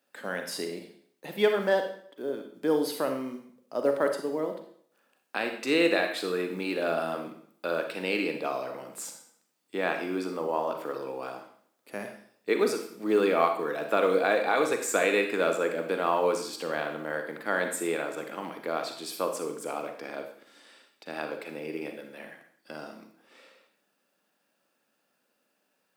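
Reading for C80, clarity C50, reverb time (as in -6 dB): 10.0 dB, 7.0 dB, 0.60 s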